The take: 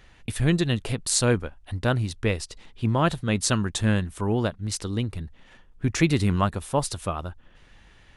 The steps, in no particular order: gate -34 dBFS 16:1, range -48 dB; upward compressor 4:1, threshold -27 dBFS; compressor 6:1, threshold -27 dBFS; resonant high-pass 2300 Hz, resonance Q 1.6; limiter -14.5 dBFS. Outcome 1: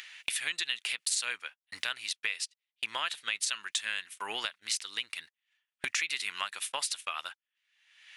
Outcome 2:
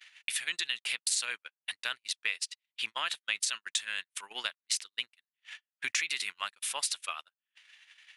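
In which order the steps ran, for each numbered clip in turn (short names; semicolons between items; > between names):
gate > resonant high-pass > upward compressor > limiter > compressor; limiter > resonant high-pass > compressor > upward compressor > gate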